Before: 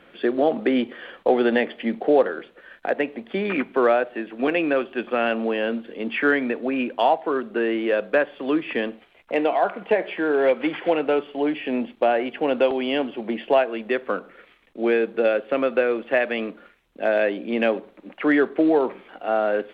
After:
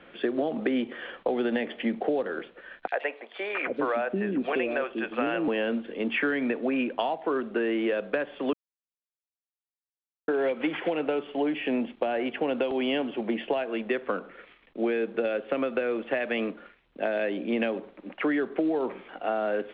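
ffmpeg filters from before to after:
ffmpeg -i in.wav -filter_complex "[0:a]asettb=1/sr,asplit=3[link_01][link_02][link_03];[link_01]atrim=end=2.874[link_04];[link_02]atrim=start=2.87:end=5.48,asetpts=PTS-STARTPTS,afade=type=in:duration=0.004:curve=qsin,afade=type=out:start_time=2.606:duration=0.004:curve=qsin,acrossover=split=460|3400[link_05][link_06][link_07];[link_06]adelay=50[link_08];[link_05]adelay=790[link_09];[link_09][link_08][link_07]amix=inputs=3:normalize=0,atrim=end_sample=115101[link_10];[link_03]atrim=start=5.476[link_11];[link_04][link_10]acrossfade=duration=0.004:curve1=hsin:curve2=qsin[link_12];[link_12][link_11]acrossfade=duration=0.004:curve1=qsin:curve2=hsin,asplit=3[link_13][link_14][link_15];[link_13]atrim=end=8.53,asetpts=PTS-STARTPTS,afade=type=out:start_time=8.526:duration=0.004:curve=hsin[link_16];[link_14]atrim=start=8.53:end=10.28,asetpts=PTS-STARTPTS,volume=0[link_17];[link_15]atrim=start=10.28,asetpts=PTS-STARTPTS,afade=type=in:duration=0.004:curve=hsin[link_18];[link_16][link_17][link_18]concat=n=3:v=0:a=1,acrossover=split=300|3000[link_19][link_20][link_21];[link_20]acompressor=threshold=-22dB:ratio=6[link_22];[link_19][link_22][link_21]amix=inputs=3:normalize=0,lowpass=frequency=4000:width=0.5412,lowpass=frequency=4000:width=1.3066,acompressor=threshold=-23dB:ratio=6" out.wav

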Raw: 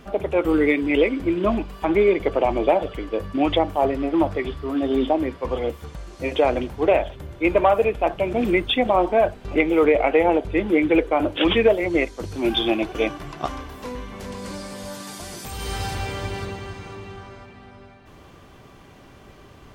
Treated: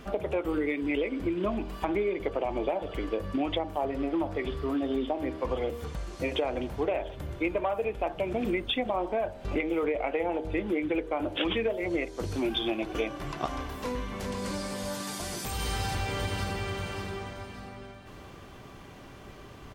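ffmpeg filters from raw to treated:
ffmpeg -i in.wav -filter_complex "[0:a]asplit=2[link_01][link_02];[link_02]afade=type=in:start_time=15.61:duration=0.01,afade=type=out:start_time=16.75:duration=0.01,aecho=0:1:580|1160|1740|2320:0.398107|0.139338|0.0487681|0.0170688[link_03];[link_01][link_03]amix=inputs=2:normalize=0,bandreject=frequency=79.02:width_type=h:width=4,bandreject=frequency=158.04:width_type=h:width=4,bandreject=frequency=237.06:width_type=h:width=4,bandreject=frequency=316.08:width_type=h:width=4,bandreject=frequency=395.1:width_type=h:width=4,bandreject=frequency=474.12:width_type=h:width=4,bandreject=frequency=553.14:width_type=h:width=4,bandreject=frequency=632.16:width_type=h:width=4,bandreject=frequency=711.18:width_type=h:width=4,bandreject=frequency=790.2:width_type=h:width=4,bandreject=frequency=869.22:width_type=h:width=4,bandreject=frequency=948.24:width_type=h:width=4,acompressor=threshold=-27dB:ratio=5" out.wav

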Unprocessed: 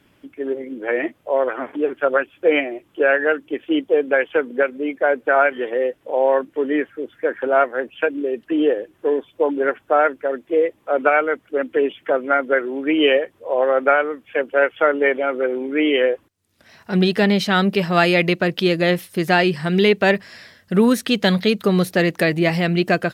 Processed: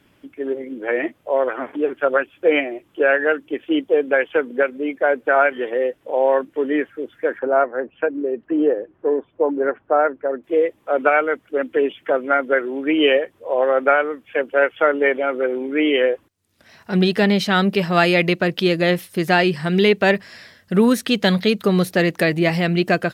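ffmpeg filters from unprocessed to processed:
ffmpeg -i in.wav -filter_complex "[0:a]asettb=1/sr,asplit=3[link_01][link_02][link_03];[link_01]atrim=end=7.394[link_04];[link_02]atrim=start=7.39:end=10.44,asetpts=PTS-STARTPTS,afade=type=in:duration=0.004:curve=qsin,afade=type=out:start_time=3.046:duration=0.004:curve=qsin,lowpass=1400[link_05];[link_03]atrim=start=10.436[link_06];[link_04][link_05]acrossfade=duration=0.004:curve1=hsin:curve2=qsin[link_07];[link_07][link_06]acrossfade=duration=0.004:curve1=qsin:curve2=hsin" out.wav

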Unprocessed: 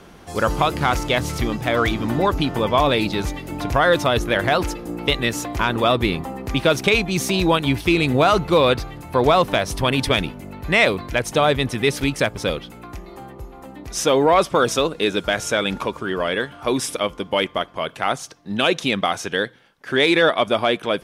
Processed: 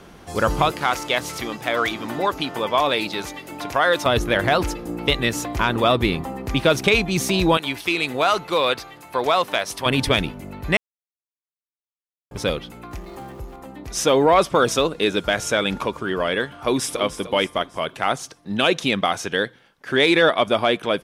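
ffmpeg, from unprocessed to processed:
ffmpeg -i in.wav -filter_complex "[0:a]asettb=1/sr,asplit=3[link_01][link_02][link_03];[link_01]atrim=end=0.714[link_04];[link_02]atrim=start=0.71:end=4.06,asetpts=PTS-STARTPTS,afade=type=in:duration=0.004:curve=qsin,afade=type=out:start_time=3.346:duration=0.004:curve=qsin,highpass=frequency=540:poles=1[link_05];[link_03]atrim=start=4.056[link_06];[link_04][link_05]acrossfade=duration=0.004:curve1=hsin:curve2=qsin[link_07];[link_07][link_06]acrossfade=duration=0.004:curve1=qsin:curve2=hsin,asettb=1/sr,asplit=3[link_08][link_09][link_10];[link_08]atrim=end=7.574[link_11];[link_09]atrim=start=7.57:end=9.86,asetpts=PTS-STARTPTS,afade=type=in:duration=0.004:curve=qsin,afade=type=out:start_time=2.286:duration=0.004:curve=qsin,highpass=frequency=790:poles=1[link_12];[link_10]atrim=start=9.856[link_13];[link_11][link_12]acrossfade=duration=0.004:curve1=hsin:curve2=qsin[link_14];[link_14][link_13]acrossfade=duration=0.004:curve1=qsin:curve2=hsin,asettb=1/sr,asplit=3[link_15][link_16][link_17];[link_15]atrim=end=12.914[link_18];[link_16]atrim=start=12.91:end=13.56,asetpts=PTS-STARTPTS,afade=type=in:duration=0.004:curve=qsin,afade=type=out:start_time=0.646:duration=0.004:curve=qsin,aeval=exprs='val(0)+0.5*0.00562*sgn(val(0))':channel_layout=same[link_19];[link_17]atrim=start=13.556[link_20];[link_18][link_19]acrossfade=duration=0.004:curve1=hsin:curve2=qsin[link_21];[link_21][link_20]acrossfade=duration=0.004:curve1=qsin:curve2=hsin,asplit=2[link_22][link_23];[link_23]afade=type=in:start_time=16.49:duration=0.01,afade=type=out:start_time=16.98:duration=0.01,aecho=0:1:300|600|900|1200|1500:0.251189|0.113035|0.0508657|0.0228896|0.0103003[link_24];[link_22][link_24]amix=inputs=2:normalize=0,asplit=3[link_25][link_26][link_27];[link_25]atrim=end=10.77,asetpts=PTS-STARTPTS,afade=type=out:start_time=10.766:duration=0.004:curve=hsin[link_28];[link_26]atrim=start=10.77:end=12.31,asetpts=PTS-STARTPTS,volume=0[link_29];[link_27]atrim=start=12.31,asetpts=PTS-STARTPTS,afade=type=in:duration=0.004:curve=hsin[link_30];[link_28][link_29][link_30]concat=n=3:v=0:a=1" out.wav

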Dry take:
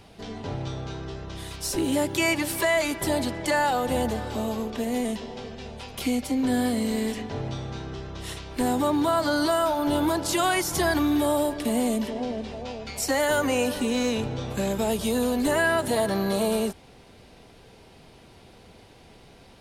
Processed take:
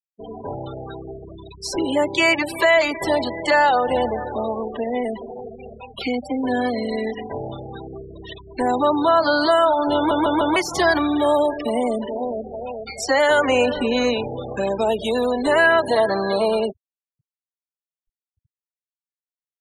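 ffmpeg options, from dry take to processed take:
ffmpeg -i in.wav -filter_complex "[0:a]asettb=1/sr,asplit=3[link_01][link_02][link_03];[link_01]atrim=end=13.484[link_04];[link_02]atrim=start=13.48:end=14.14,asetpts=PTS-STARTPTS,afade=type=in:duration=0.004:curve=qsin,afade=type=out:start_time=0.656:duration=0.004:curve=qsin,lowshelf=frequency=200:gain=8[link_05];[link_03]atrim=start=14.136[link_06];[link_04][link_05]acrossfade=duration=0.004:curve1=hsin:curve2=qsin[link_07];[link_07][link_06]acrossfade=duration=0.004:curve1=qsin:curve2=hsin,asplit=5[link_08][link_09][link_10][link_11][link_12];[link_08]atrim=end=10.112[link_13];[link_09]atrim=start=9.958:end=10.112[link_14];[link_10]atrim=start=9.958:end=10.112[link_15];[link_11]atrim=start=9.958:end=10.112[link_16];[link_12]atrim=start=10.558[link_17];[link_13][link_14]acrossfade=duration=0.004:curve1=hsin:curve2=hsin[link_18];[link_18][link_15]acrossfade=duration=0.004:curve1=hsin:curve2=hsin[link_19];[link_19][link_16]acrossfade=duration=0.004:curve1=hsin:curve2=hsin[link_20];[link_20][link_17]acrossfade=duration=0.004:curve1=hsin:curve2=hsin,afftfilt=real='re*gte(hypot(re,im),0.0316)':imag='im*gte(hypot(re,im),0.0316)':win_size=1024:overlap=0.75,acrossover=split=360 6000:gain=0.251 1 0.158[link_21][link_22][link_23];[link_21][link_22][link_23]amix=inputs=3:normalize=0,volume=8dB" out.wav

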